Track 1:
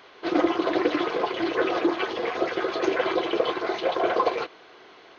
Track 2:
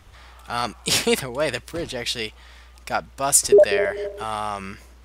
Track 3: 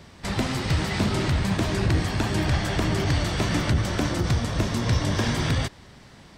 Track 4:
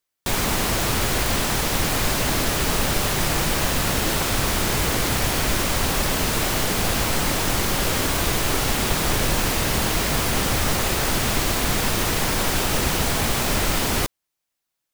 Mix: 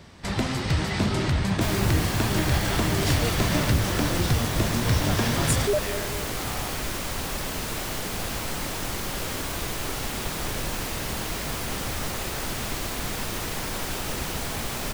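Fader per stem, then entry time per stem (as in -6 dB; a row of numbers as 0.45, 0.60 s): off, -12.0 dB, -0.5 dB, -8.5 dB; off, 2.15 s, 0.00 s, 1.35 s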